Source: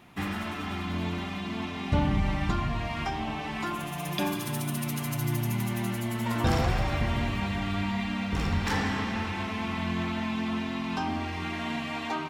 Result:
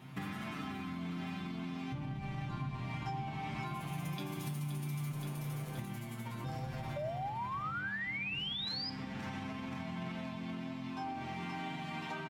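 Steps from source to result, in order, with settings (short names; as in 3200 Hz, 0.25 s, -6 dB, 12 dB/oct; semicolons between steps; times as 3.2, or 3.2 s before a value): bell 160 Hz +14.5 dB 1.7 oct; 5.12–5.79 tube stage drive 34 dB, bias 0.8; feedback echo 0.524 s, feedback 54%, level -8 dB; limiter -15.5 dBFS, peak gain reduction 11.5 dB; low shelf 400 Hz -6.5 dB; resonator 130 Hz, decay 0.21 s, harmonics all, mix 90%; 6.96–8.9 painted sound rise 570–5100 Hz -31 dBFS; compressor 6:1, threshold -45 dBFS, peak gain reduction 16 dB; on a send at -10 dB: reverb RT60 1.0 s, pre-delay 6 ms; on the sum: gain +6.5 dB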